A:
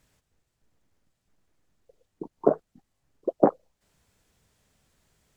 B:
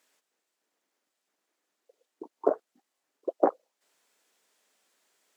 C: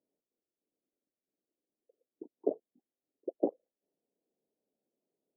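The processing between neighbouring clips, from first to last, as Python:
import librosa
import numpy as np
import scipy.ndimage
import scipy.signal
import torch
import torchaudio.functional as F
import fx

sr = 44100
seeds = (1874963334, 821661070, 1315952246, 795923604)

y1 = scipy.signal.sosfilt(scipy.signal.butter(4, 280.0, 'highpass', fs=sr, output='sos'), x)
y1 = fx.low_shelf(y1, sr, hz=490.0, db=-7.0)
y2 = scipy.ndimage.gaussian_filter1d(y1, 18.0, mode='constant')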